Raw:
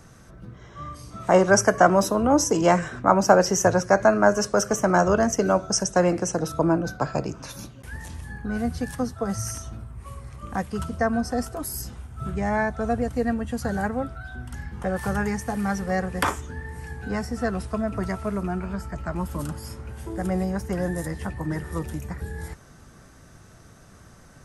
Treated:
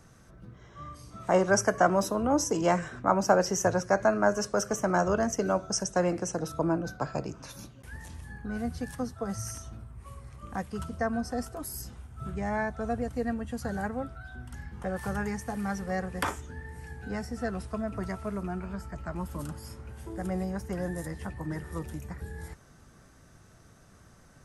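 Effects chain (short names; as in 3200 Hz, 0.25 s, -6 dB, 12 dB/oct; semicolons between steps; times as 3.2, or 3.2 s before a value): 16.25–17.5 notch 1100 Hz, Q 8.7; gain -6.5 dB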